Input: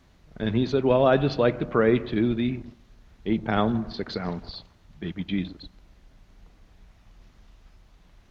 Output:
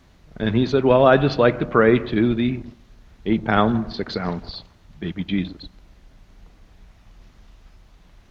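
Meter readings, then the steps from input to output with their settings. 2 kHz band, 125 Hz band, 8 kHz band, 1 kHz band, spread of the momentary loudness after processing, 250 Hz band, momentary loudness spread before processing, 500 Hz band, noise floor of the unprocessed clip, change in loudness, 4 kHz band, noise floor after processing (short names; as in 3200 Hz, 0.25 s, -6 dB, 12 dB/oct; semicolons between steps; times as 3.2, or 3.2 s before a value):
+7.5 dB, +4.5 dB, n/a, +7.0 dB, 17 LU, +4.5 dB, 16 LU, +5.0 dB, -58 dBFS, +5.5 dB, +5.0 dB, -53 dBFS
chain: dynamic EQ 1400 Hz, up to +4 dB, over -37 dBFS, Q 1.1; gain +4.5 dB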